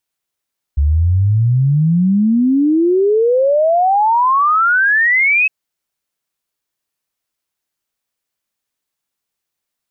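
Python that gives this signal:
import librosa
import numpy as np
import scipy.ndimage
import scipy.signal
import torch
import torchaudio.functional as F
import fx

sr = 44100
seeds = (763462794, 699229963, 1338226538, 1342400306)

y = fx.ess(sr, length_s=4.71, from_hz=69.0, to_hz=2600.0, level_db=-9.5)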